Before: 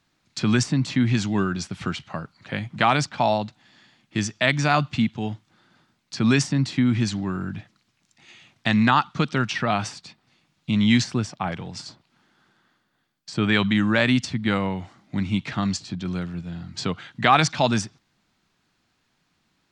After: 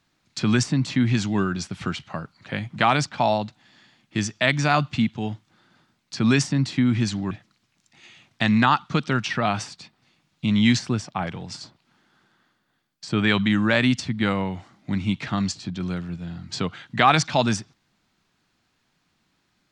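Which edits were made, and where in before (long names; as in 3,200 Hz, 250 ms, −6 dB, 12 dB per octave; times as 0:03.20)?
0:07.31–0:07.56: remove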